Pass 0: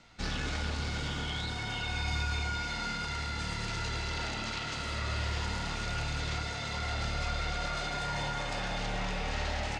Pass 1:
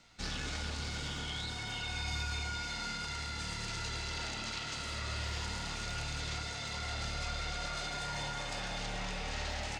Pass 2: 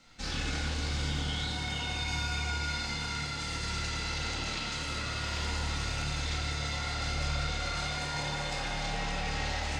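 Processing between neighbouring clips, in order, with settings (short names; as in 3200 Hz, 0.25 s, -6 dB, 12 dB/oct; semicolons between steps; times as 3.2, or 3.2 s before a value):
high shelf 4200 Hz +9 dB; gain -5.5 dB
shoebox room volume 800 m³, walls mixed, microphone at 2.1 m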